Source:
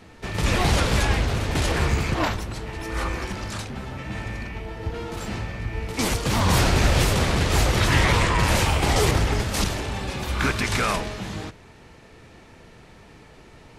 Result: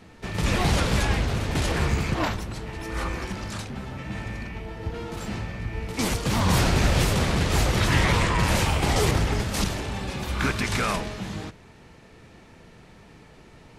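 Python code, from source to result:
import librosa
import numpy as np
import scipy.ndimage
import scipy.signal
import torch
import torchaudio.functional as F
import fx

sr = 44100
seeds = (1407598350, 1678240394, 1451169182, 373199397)

y = fx.peak_eq(x, sr, hz=180.0, db=3.5, octaves=0.89)
y = y * librosa.db_to_amplitude(-2.5)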